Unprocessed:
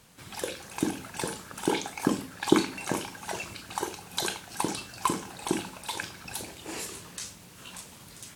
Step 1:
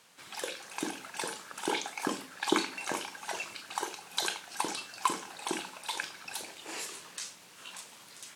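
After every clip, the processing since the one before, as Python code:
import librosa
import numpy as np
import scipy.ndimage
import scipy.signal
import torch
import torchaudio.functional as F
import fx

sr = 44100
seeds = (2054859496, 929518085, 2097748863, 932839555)

y = fx.weighting(x, sr, curve='A')
y = y * 10.0 ** (-1.5 / 20.0)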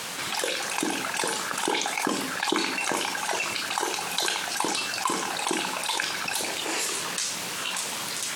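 y = fx.env_flatten(x, sr, amount_pct=70)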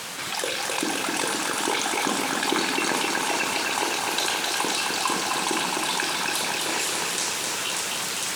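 y = fx.echo_crushed(x, sr, ms=259, feedback_pct=80, bits=8, wet_db=-3.5)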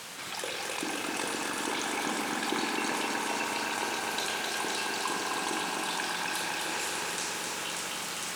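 y = fx.echo_bbd(x, sr, ms=109, stages=2048, feedback_pct=84, wet_db=-6.5)
y = y * 10.0 ** (-8.5 / 20.0)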